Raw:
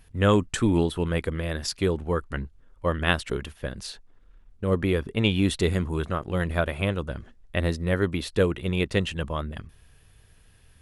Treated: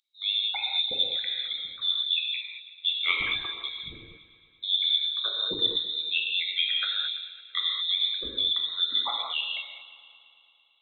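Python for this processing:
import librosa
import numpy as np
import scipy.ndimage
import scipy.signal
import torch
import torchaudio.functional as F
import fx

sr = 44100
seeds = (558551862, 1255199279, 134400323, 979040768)

p1 = fx.envelope_sharpen(x, sr, power=3.0)
p2 = scipy.signal.sosfilt(scipy.signal.butter(2, 340.0, 'highpass', fs=sr, output='sos'), p1)
p3 = fx.rider(p2, sr, range_db=4, speed_s=0.5)
p4 = fx.freq_invert(p3, sr, carrier_hz=3900)
p5 = p4 + fx.echo_heads(p4, sr, ms=112, heads='second and third', feedback_pct=50, wet_db=-19.5, dry=0)
p6 = fx.rev_gated(p5, sr, seeds[0], gate_ms=250, shape='flat', drr_db=-2.0)
y = p6 * librosa.db_to_amplitude(-2.0)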